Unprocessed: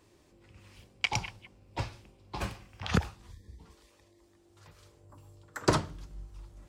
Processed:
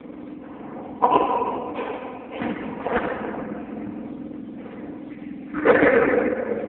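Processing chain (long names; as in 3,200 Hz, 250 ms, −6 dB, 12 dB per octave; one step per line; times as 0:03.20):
frequency axis turned over on the octave scale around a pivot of 1,500 Hz
0:01.11–0:01.84: high-pass filter 110 Hz 12 dB per octave
0:05.58–0:06.01: flat-topped bell 910 Hz +9.5 dB 2.9 octaves
comb filter 4 ms, depth 61%
hum removal 376.4 Hz, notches 15
upward compression, threshold −41 dBFS
high-frequency loss of the air 480 metres
far-end echo of a speakerphone 140 ms, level −28 dB
convolution reverb RT60 2.6 s, pre-delay 37 ms, DRR 0 dB
boost into a limiter +16 dB
AMR narrowband 4.75 kbit/s 8,000 Hz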